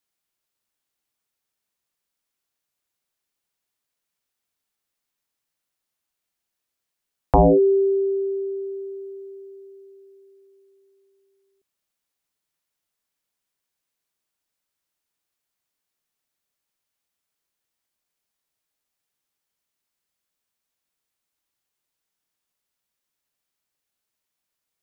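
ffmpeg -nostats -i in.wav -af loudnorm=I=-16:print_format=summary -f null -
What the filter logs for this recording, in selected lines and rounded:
Input Integrated:    -20.3 LUFS
Input True Peak:      -8.8 dBTP
Input LRA:            22.6 LU
Input Threshold:     -34.2 LUFS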